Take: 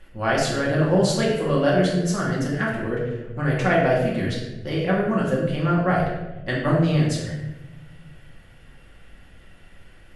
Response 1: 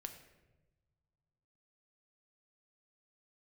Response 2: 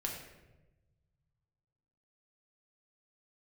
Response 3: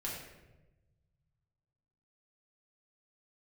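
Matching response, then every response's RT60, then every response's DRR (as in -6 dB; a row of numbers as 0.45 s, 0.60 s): 3; no single decay rate, 1.1 s, 1.1 s; 5.5 dB, -1.0 dB, -5.5 dB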